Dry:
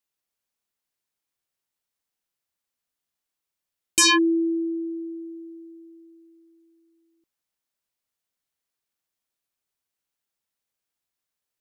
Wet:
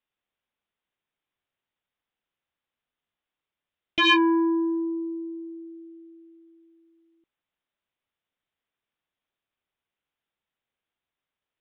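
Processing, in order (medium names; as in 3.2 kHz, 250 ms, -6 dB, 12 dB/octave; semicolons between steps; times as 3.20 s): resampled via 8 kHz; transformer saturation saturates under 920 Hz; trim +2.5 dB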